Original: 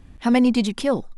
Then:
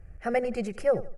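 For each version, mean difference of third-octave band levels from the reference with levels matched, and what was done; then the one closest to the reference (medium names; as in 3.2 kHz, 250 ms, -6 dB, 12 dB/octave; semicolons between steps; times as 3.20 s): 5.0 dB: treble shelf 2.4 kHz -11 dB; static phaser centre 980 Hz, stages 6; on a send: feedback delay 86 ms, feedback 33%, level -17 dB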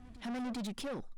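7.5 dB: peak limiter -12 dBFS, peak gain reduction 6 dB; saturation -27.5 dBFS, distortion -6 dB; on a send: reverse echo 399 ms -19.5 dB; on the sum: trim -8.5 dB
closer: first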